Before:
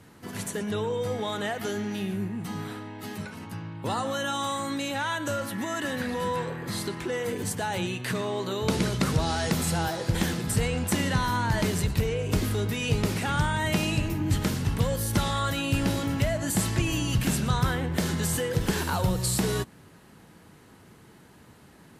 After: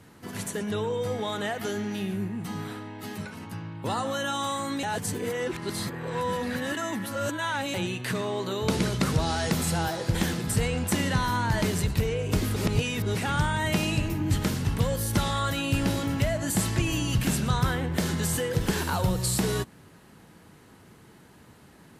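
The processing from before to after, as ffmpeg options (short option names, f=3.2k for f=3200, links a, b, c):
-filter_complex "[0:a]asplit=5[a][b][c][d][e];[a]atrim=end=4.832[f];[b]atrim=start=4.828:end=7.742,asetpts=PTS-STARTPTS,areverse[g];[c]atrim=start=7.738:end=12.562[h];[d]atrim=start=12.558:end=13.152,asetpts=PTS-STARTPTS,areverse[i];[e]atrim=start=13.148[j];[f][g]acrossfade=d=0.004:c1=hsin:c2=hsin[k];[k][h]acrossfade=d=0.004:c1=hsin:c2=hsin[l];[l][i]acrossfade=d=0.004:c1=hsin:c2=hsin[m];[m][j]acrossfade=d=0.004:c1=hsin:c2=hsin"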